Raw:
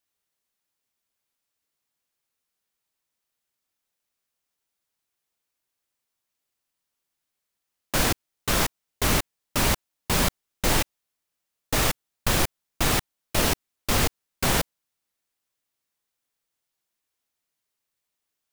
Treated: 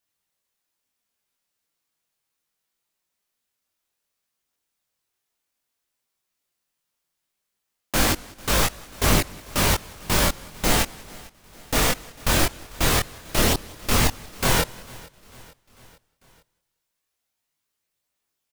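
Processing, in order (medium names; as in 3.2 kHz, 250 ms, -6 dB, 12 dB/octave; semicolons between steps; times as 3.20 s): chorus voices 2, 0.11 Hz, delay 22 ms, depth 3.2 ms; feedback delay 447 ms, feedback 58%, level -23 dB; modulated delay 189 ms, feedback 33%, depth 140 cents, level -22.5 dB; trim +5.5 dB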